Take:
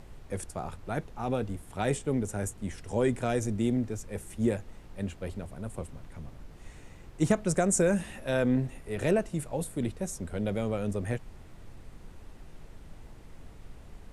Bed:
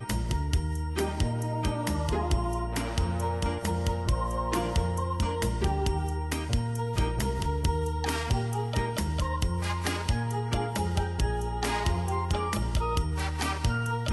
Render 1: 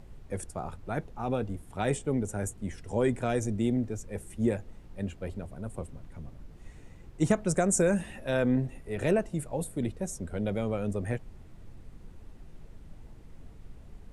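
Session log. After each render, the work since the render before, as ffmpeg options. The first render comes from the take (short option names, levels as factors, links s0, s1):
-af "afftdn=nr=6:nf=-50"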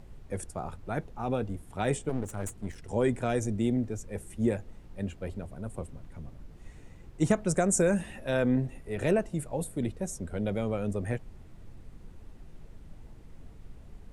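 -filter_complex "[0:a]asettb=1/sr,asplit=3[s0][s1][s2];[s0]atrim=end=2.094[s3];[s1]atrim=start=2.09:end=2.89,asetpts=PTS-STARTPTS,afade=t=in:d=0.004:c=qsin,afade=t=out:st=0.796:d=0.004:c=qsin,aeval=exprs='clip(val(0),-1,0.00794)':c=same[s4];[s2]atrim=start=2.886[s5];[s3][s4]acrossfade=d=0.004:c1=hsin:c2=qsin[s6];[s6][s5]acrossfade=d=0.004:c1=qsin:c2=hsin"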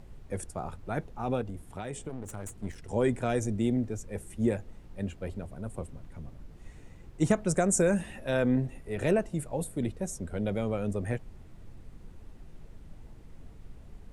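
-filter_complex "[0:a]asettb=1/sr,asplit=3[s0][s1][s2];[s0]atrim=end=1.414[s3];[s1]atrim=start=1.41:end=2.52,asetpts=PTS-STARTPTS,afade=t=in:d=0.004:c=qsin,afade=t=out:st=1.106:d=0.004:c=qsin,acompressor=threshold=0.0224:ratio=6:attack=3.2:release=140:knee=1:detection=peak[s4];[s2]atrim=start=2.516[s5];[s3][s4]acrossfade=d=0.004:c1=hsin:c2=qsin[s6];[s6][s5]acrossfade=d=0.004:c1=qsin:c2=hsin"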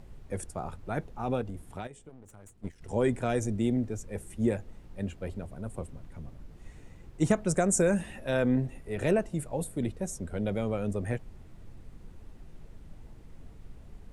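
-filter_complex "[0:a]asettb=1/sr,asplit=3[s0][s1][s2];[s0]atrim=end=1.874[s3];[s1]atrim=start=1.87:end=2.81,asetpts=PTS-STARTPTS,afade=t=in:d=0.004:c=qsin,afade=t=out:st=0.936:d=0.004:c=qsin,agate=range=0.251:threshold=0.0178:ratio=16:release=100:detection=peak[s4];[s2]atrim=start=2.806[s5];[s3][s4]acrossfade=d=0.004:c1=hsin:c2=qsin[s6];[s6][s5]acrossfade=d=0.004:c1=qsin:c2=hsin"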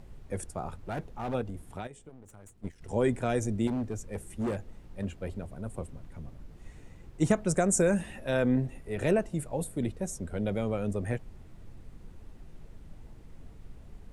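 -filter_complex "[0:a]asplit=3[s0][s1][s2];[s0]afade=t=out:st=0.84:d=0.02[s3];[s1]asoftclip=type=hard:threshold=0.0316,afade=t=in:st=0.84:d=0.02,afade=t=out:st=1.33:d=0.02[s4];[s2]afade=t=in:st=1.33:d=0.02[s5];[s3][s4][s5]amix=inputs=3:normalize=0,asettb=1/sr,asplit=3[s6][s7][s8];[s6]atrim=end=3.674[s9];[s7]atrim=start=3.67:end=5.05,asetpts=PTS-STARTPTS,afade=t=in:d=0.004:c=qsin,afade=t=out:st=1.376:d=0.004:c=qsin,volume=23.7,asoftclip=hard,volume=0.0422[s10];[s8]atrim=start=5.046[s11];[s9][s10]acrossfade=d=0.004:c1=hsin:c2=qsin[s12];[s12][s11]acrossfade=d=0.004:c1=qsin:c2=hsin"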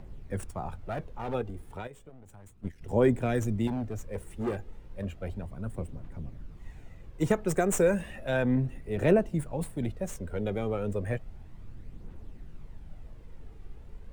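-filter_complex "[0:a]aphaser=in_gain=1:out_gain=1:delay=2.6:decay=0.36:speed=0.33:type=triangular,acrossover=split=220|4000[s0][s1][s2];[s2]aeval=exprs='max(val(0),0)':c=same[s3];[s0][s1][s3]amix=inputs=3:normalize=0"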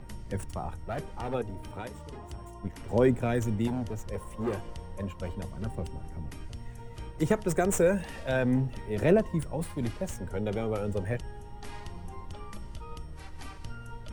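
-filter_complex "[1:a]volume=0.158[s0];[0:a][s0]amix=inputs=2:normalize=0"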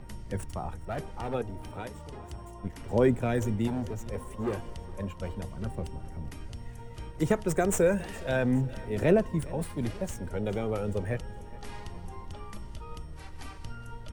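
-af "aecho=1:1:415|830|1245|1660:0.0944|0.05|0.0265|0.0141"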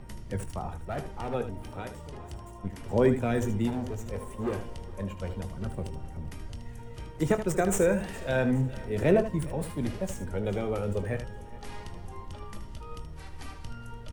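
-af "aecho=1:1:21|77:0.251|0.299"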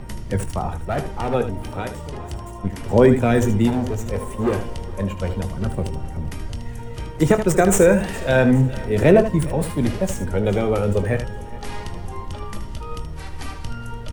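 -af "volume=3.35,alimiter=limit=0.708:level=0:latency=1"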